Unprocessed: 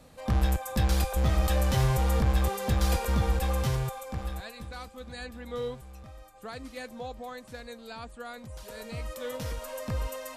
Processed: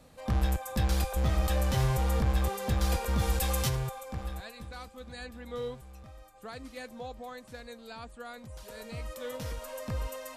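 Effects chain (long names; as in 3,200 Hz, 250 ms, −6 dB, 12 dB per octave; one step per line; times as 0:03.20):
0:03.18–0:03.68: high-shelf EQ 3,900 Hz → 2,500 Hz +11.5 dB
level −2.5 dB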